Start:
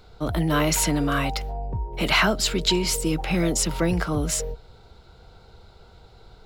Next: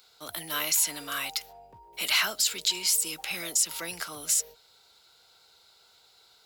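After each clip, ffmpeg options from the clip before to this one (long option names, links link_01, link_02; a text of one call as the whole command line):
ffmpeg -i in.wav -af "aderivative,alimiter=limit=-20dB:level=0:latency=1:release=78,volume=6.5dB" out.wav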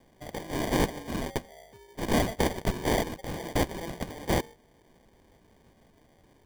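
ffmpeg -i in.wav -af "acrusher=samples=33:mix=1:aa=0.000001" out.wav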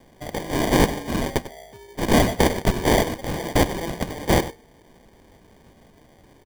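ffmpeg -i in.wav -af "aecho=1:1:97:0.188,volume=8dB" out.wav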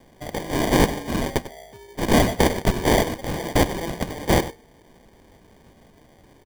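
ffmpeg -i in.wav -af anull out.wav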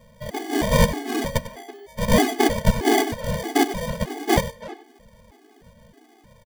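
ffmpeg -i in.wav -filter_complex "[0:a]asplit=2[link_01][link_02];[link_02]adelay=330,highpass=300,lowpass=3400,asoftclip=type=hard:threshold=-14dB,volume=-14dB[link_03];[link_01][link_03]amix=inputs=2:normalize=0,afftfilt=real='re*gt(sin(2*PI*1.6*pts/sr)*(1-2*mod(floor(b*sr/1024/220),2)),0)':imag='im*gt(sin(2*PI*1.6*pts/sr)*(1-2*mod(floor(b*sr/1024/220),2)),0)':win_size=1024:overlap=0.75,volume=3.5dB" out.wav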